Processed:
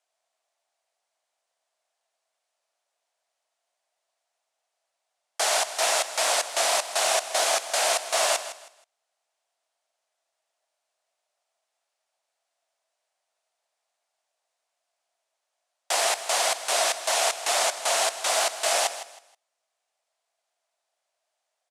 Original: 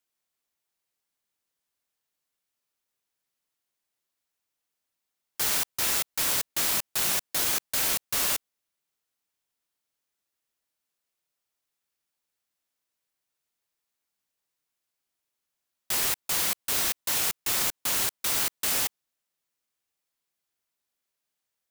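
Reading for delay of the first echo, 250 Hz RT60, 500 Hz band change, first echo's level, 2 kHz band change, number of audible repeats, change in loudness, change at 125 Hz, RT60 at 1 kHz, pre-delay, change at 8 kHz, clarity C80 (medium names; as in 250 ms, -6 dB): 159 ms, no reverb, +14.0 dB, -13.0 dB, +5.5 dB, 2, +1.5 dB, under -20 dB, no reverb, no reverb, +3.0 dB, no reverb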